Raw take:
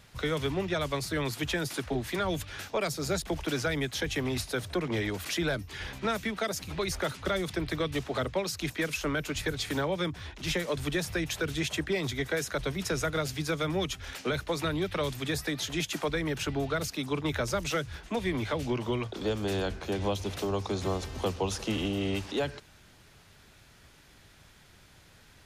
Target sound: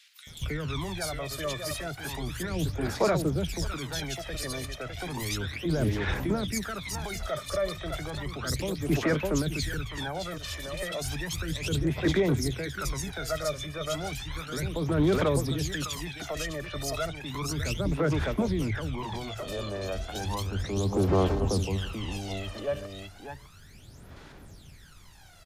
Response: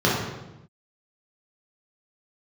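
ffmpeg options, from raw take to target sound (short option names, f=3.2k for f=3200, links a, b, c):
-filter_complex "[0:a]asplit=2[a][b];[b]aecho=0:1:606:0.299[c];[a][c]amix=inputs=2:normalize=0,alimiter=level_in=2.5dB:limit=-24dB:level=0:latency=1:release=11,volume=-2.5dB,bandreject=f=60:t=h:w=6,bandreject=f=120:t=h:w=6,acrossover=split=2400[d][e];[d]adelay=270[f];[f][e]amix=inputs=2:normalize=0,aphaser=in_gain=1:out_gain=1:delay=1.7:decay=0.74:speed=0.33:type=sinusoidal"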